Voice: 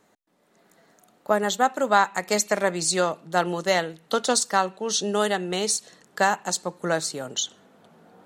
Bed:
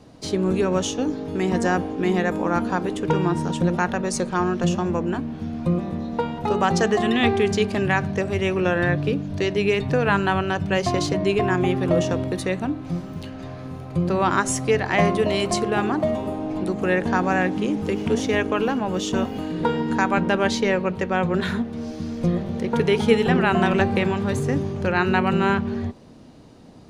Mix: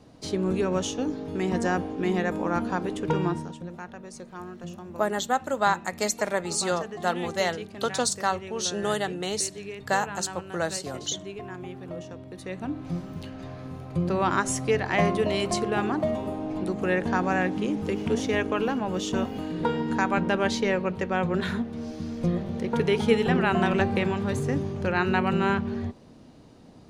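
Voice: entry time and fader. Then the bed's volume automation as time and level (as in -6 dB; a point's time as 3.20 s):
3.70 s, -4.0 dB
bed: 3.29 s -4.5 dB
3.60 s -17.5 dB
12.25 s -17.5 dB
12.78 s -4 dB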